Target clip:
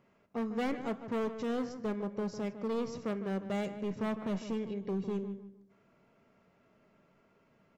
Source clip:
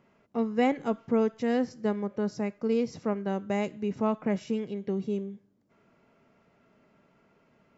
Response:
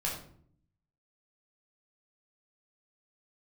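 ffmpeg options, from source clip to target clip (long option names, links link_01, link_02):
-filter_complex "[0:a]asoftclip=type=hard:threshold=-26dB,asplit=2[link_01][link_02];[link_02]adelay=153,lowpass=frequency=2200:poles=1,volume=-10.5dB,asplit=2[link_03][link_04];[link_04]adelay=153,lowpass=frequency=2200:poles=1,volume=0.32,asplit=2[link_05][link_06];[link_06]adelay=153,lowpass=frequency=2200:poles=1,volume=0.32[link_07];[link_01][link_03][link_05][link_07]amix=inputs=4:normalize=0,asplit=2[link_08][link_09];[1:a]atrim=start_sample=2205,atrim=end_sample=3087[link_10];[link_09][link_10]afir=irnorm=-1:irlink=0,volume=-16dB[link_11];[link_08][link_11]amix=inputs=2:normalize=0,volume=-4.5dB"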